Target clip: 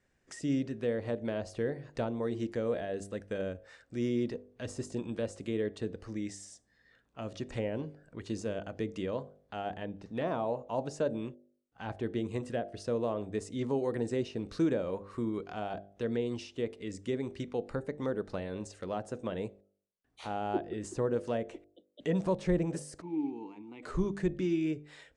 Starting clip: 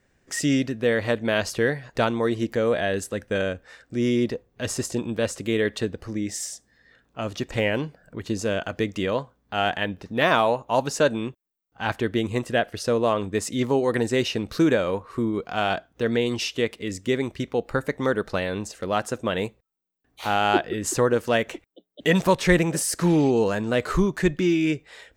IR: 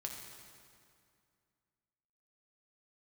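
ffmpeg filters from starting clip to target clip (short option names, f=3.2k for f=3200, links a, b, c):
-filter_complex "[0:a]asplit=3[a][b][c];[a]afade=t=out:st=23:d=0.02[d];[b]asplit=3[e][f][g];[e]bandpass=f=300:t=q:w=8,volume=0dB[h];[f]bandpass=f=870:t=q:w=8,volume=-6dB[i];[g]bandpass=f=2.24k:t=q:w=8,volume=-9dB[j];[h][i][j]amix=inputs=3:normalize=0,afade=t=in:st=23:d=0.02,afade=t=out:st=23.82:d=0.02[k];[c]afade=t=in:st=23.82:d=0.02[l];[d][k][l]amix=inputs=3:normalize=0,acrossover=split=790[m][n];[m]bandreject=f=49.68:t=h:w=4,bandreject=f=99.36:t=h:w=4,bandreject=f=149.04:t=h:w=4,bandreject=f=198.72:t=h:w=4,bandreject=f=248.4:t=h:w=4,bandreject=f=298.08:t=h:w=4,bandreject=f=347.76:t=h:w=4,bandreject=f=397.44:t=h:w=4,bandreject=f=447.12:t=h:w=4,bandreject=f=496.8:t=h:w=4,bandreject=f=546.48:t=h:w=4,bandreject=f=596.16:t=h:w=4,bandreject=f=645.84:t=h:w=4,bandreject=f=695.52:t=h:w=4,bandreject=f=745.2:t=h:w=4,bandreject=f=794.88:t=h:w=4,bandreject=f=844.56:t=h:w=4[o];[n]acompressor=threshold=-38dB:ratio=6[p];[o][p]amix=inputs=2:normalize=0,aresample=22050,aresample=44100,volume=-8.5dB"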